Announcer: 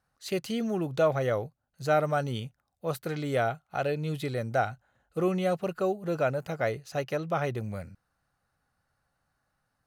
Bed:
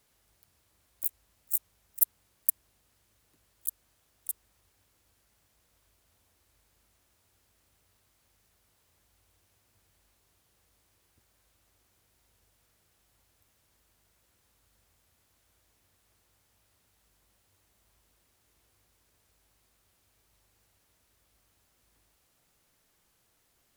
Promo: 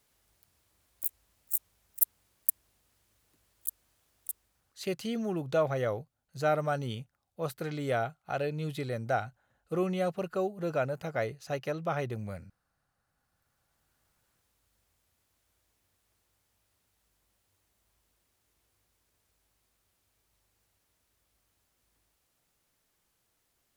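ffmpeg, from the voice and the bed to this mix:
-filter_complex "[0:a]adelay=4550,volume=0.708[s0];[1:a]volume=4.47,afade=t=out:st=4.19:d=0.81:silence=0.125893,afade=t=in:st=13.04:d=1.04:silence=0.188365[s1];[s0][s1]amix=inputs=2:normalize=0"

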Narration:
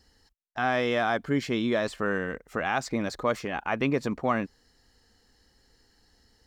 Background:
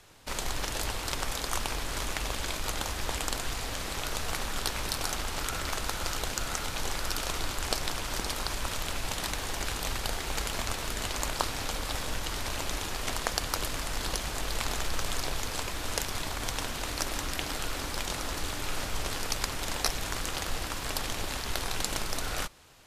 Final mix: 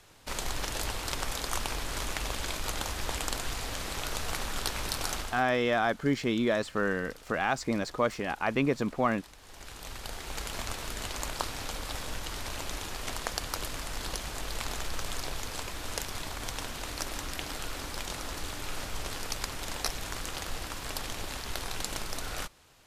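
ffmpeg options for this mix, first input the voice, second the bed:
-filter_complex "[0:a]adelay=4750,volume=0.891[s0];[1:a]volume=5.96,afade=t=out:st=5.16:d=0.28:silence=0.112202,afade=t=in:st=9.4:d=1.2:silence=0.149624[s1];[s0][s1]amix=inputs=2:normalize=0"

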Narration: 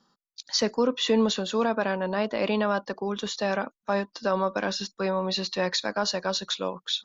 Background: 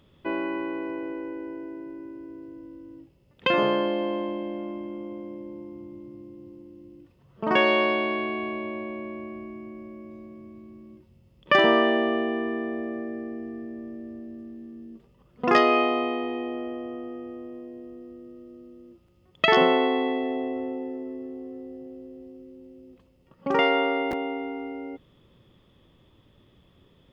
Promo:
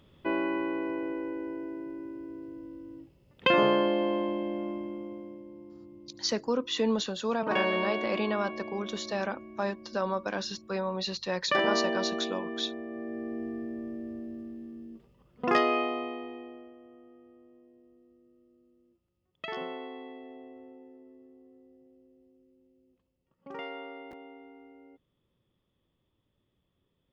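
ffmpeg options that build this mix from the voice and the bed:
-filter_complex "[0:a]adelay=5700,volume=0.562[s0];[1:a]volume=2.37,afade=t=out:st=4.68:d=0.77:silence=0.421697,afade=t=in:st=12.88:d=0.54:silence=0.398107,afade=t=out:st=14.24:d=2.5:silence=0.11885[s1];[s0][s1]amix=inputs=2:normalize=0"

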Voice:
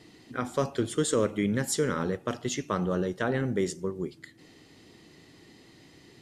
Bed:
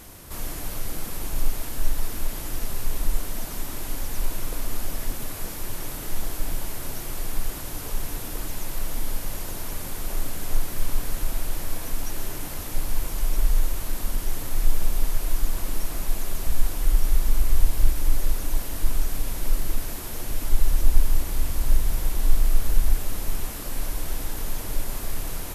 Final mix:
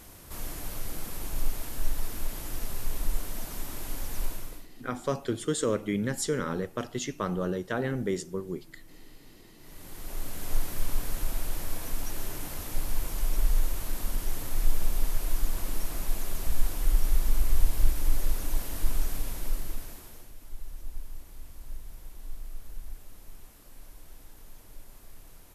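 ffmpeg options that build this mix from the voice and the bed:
-filter_complex "[0:a]adelay=4500,volume=0.794[s0];[1:a]volume=7.08,afade=t=out:st=4.24:d=0.43:silence=0.0891251,afade=t=in:st=9.58:d=0.99:silence=0.0794328,afade=t=out:st=19.06:d=1.27:silence=0.149624[s1];[s0][s1]amix=inputs=2:normalize=0"

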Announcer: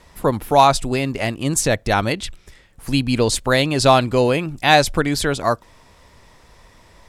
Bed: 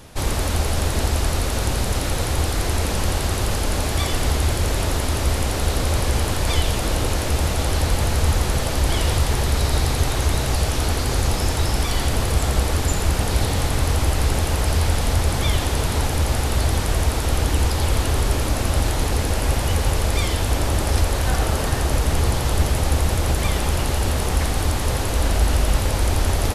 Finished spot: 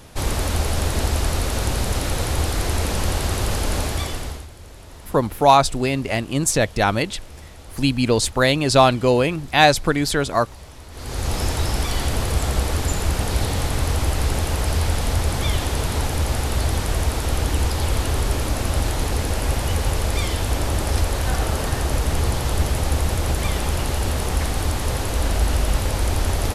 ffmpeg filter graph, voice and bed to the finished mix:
-filter_complex "[0:a]adelay=4900,volume=0.944[s0];[1:a]volume=8.41,afade=t=out:st=3.78:d=0.69:silence=0.1,afade=t=in:st=10.91:d=0.48:silence=0.112202[s1];[s0][s1]amix=inputs=2:normalize=0"

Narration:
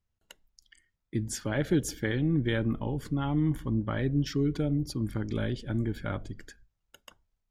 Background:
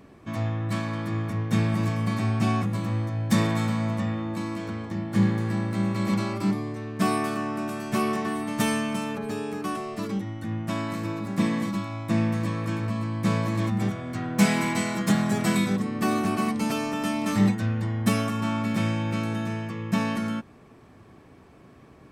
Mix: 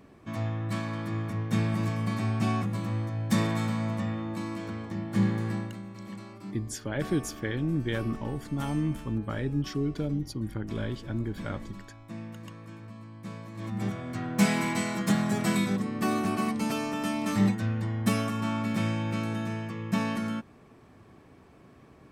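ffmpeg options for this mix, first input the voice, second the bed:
-filter_complex "[0:a]adelay=5400,volume=0.794[s0];[1:a]volume=3.16,afade=t=out:st=5.5:d=0.31:silence=0.223872,afade=t=in:st=13.54:d=0.41:silence=0.211349[s1];[s0][s1]amix=inputs=2:normalize=0"

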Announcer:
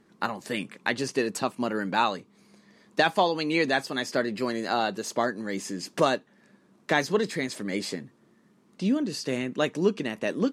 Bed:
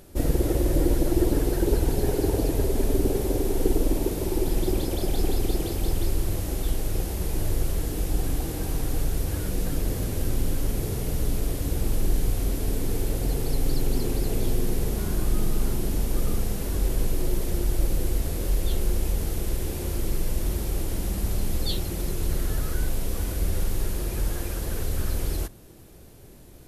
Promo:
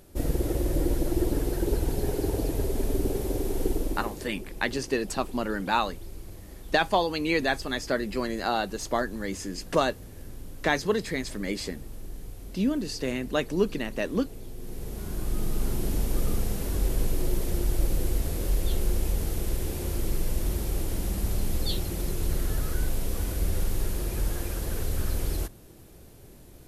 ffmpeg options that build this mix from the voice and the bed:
-filter_complex "[0:a]adelay=3750,volume=0.891[s0];[1:a]volume=3.55,afade=t=out:st=3.63:d=0.73:silence=0.237137,afade=t=in:st=14.55:d=1.35:silence=0.177828[s1];[s0][s1]amix=inputs=2:normalize=0"

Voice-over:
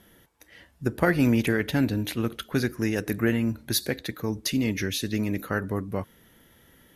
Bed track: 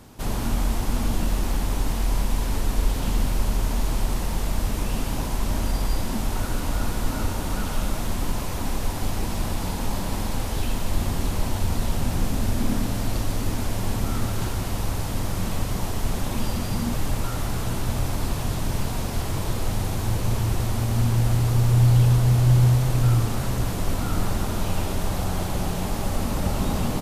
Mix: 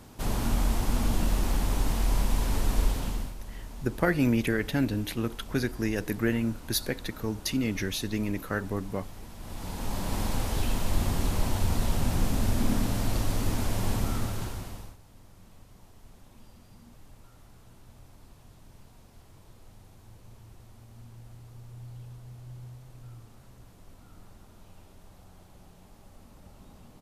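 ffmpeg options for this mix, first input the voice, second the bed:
-filter_complex "[0:a]adelay=3000,volume=0.708[s0];[1:a]volume=4.47,afade=t=out:st=2.81:d=0.54:silence=0.16788,afade=t=in:st=9.39:d=0.84:silence=0.16788,afade=t=out:st=13.94:d=1.03:silence=0.0562341[s1];[s0][s1]amix=inputs=2:normalize=0"

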